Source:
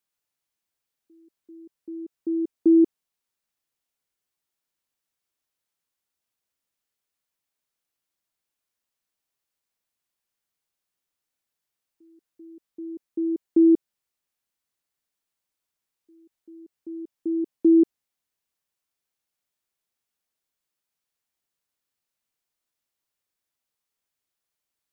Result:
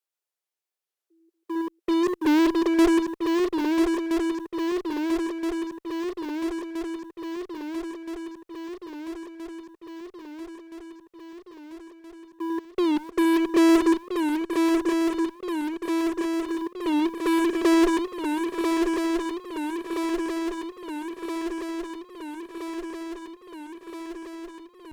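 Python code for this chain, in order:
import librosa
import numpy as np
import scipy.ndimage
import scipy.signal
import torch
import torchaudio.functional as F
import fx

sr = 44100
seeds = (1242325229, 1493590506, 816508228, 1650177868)

p1 = fx.reverse_delay(x, sr, ms=119, wet_db=-13)
p2 = scipy.signal.sosfilt(scipy.signal.butter(16, 340.0, 'highpass', fs=sr, output='sos'), p1)
p3 = fx.low_shelf(p2, sr, hz=490.0, db=5.0)
p4 = fx.over_compress(p3, sr, threshold_db=-26.0, ratio=-0.5, at=(2.03, 2.79))
p5 = fx.tube_stage(p4, sr, drive_db=12.0, bias=0.5)
p6 = fx.fuzz(p5, sr, gain_db=47.0, gate_db=-52.0)
p7 = p5 + (p6 * 10.0 ** (-4.0 / 20.0))
p8 = fx.echo_swing(p7, sr, ms=1322, ratio=3, feedback_pct=68, wet_db=-5)
p9 = fx.record_warp(p8, sr, rpm=45.0, depth_cents=160.0)
y = p9 * 10.0 ** (-3.5 / 20.0)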